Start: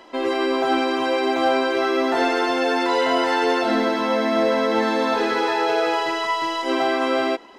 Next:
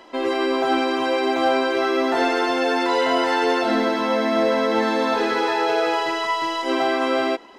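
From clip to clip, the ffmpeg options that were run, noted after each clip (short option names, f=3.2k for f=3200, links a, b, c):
-af anull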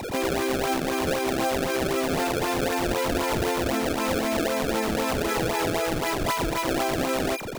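-af "aeval=exprs='val(0)+0.0316*sin(2*PI*2400*n/s)':c=same,acrusher=samples=26:mix=1:aa=0.000001:lfo=1:lforange=41.6:lforate=3.9,acompressor=threshold=-22dB:ratio=6"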